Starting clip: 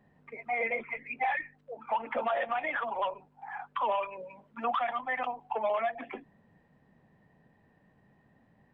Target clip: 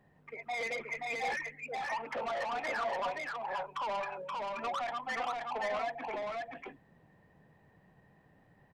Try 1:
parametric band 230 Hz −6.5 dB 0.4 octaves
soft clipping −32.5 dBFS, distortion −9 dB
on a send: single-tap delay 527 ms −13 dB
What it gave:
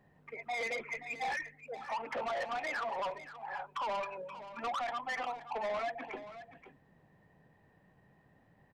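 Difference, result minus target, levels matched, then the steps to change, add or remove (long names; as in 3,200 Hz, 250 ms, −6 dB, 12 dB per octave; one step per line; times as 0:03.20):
echo-to-direct −10.5 dB
change: single-tap delay 527 ms −2.5 dB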